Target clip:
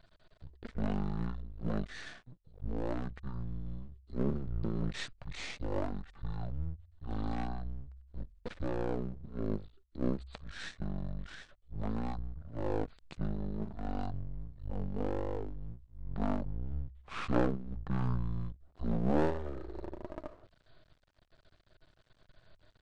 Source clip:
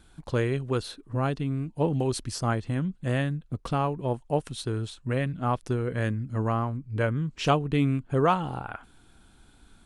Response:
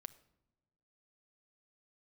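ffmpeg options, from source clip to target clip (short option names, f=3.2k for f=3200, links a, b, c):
-af "aeval=exprs='max(val(0),0)':c=same,bandreject=f=50:t=h:w=6,bandreject=f=100:t=h:w=6,bandreject=f=150:t=h:w=6,bandreject=f=200:t=h:w=6,asetrate=19051,aresample=44100,volume=-3.5dB"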